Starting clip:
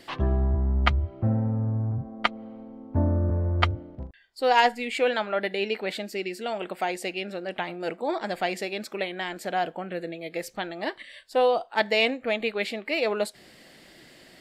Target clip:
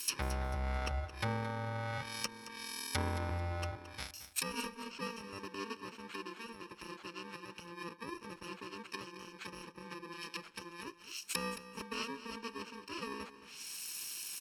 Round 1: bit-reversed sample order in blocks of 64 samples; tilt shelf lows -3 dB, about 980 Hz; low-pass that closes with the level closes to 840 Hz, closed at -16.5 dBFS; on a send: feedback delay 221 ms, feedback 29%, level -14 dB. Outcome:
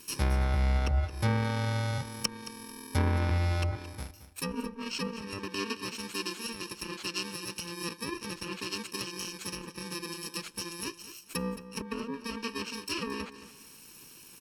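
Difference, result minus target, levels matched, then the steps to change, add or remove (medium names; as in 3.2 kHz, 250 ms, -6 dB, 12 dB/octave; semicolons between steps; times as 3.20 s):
1 kHz band -4.0 dB
change: tilt shelf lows -14 dB, about 980 Hz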